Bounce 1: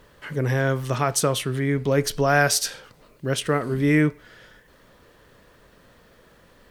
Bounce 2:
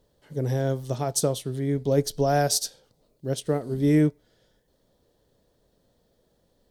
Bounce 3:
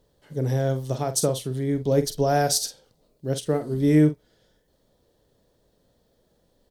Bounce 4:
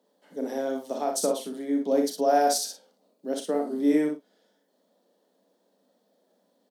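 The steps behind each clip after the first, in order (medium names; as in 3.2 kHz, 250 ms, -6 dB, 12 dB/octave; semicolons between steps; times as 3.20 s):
high-order bell 1.7 kHz -12.5 dB; upward expansion 1.5:1, over -40 dBFS
doubling 46 ms -10.5 dB; trim +1 dB
rippled Chebyshev high-pass 180 Hz, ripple 6 dB; early reflections 35 ms -8.5 dB, 60 ms -5.5 dB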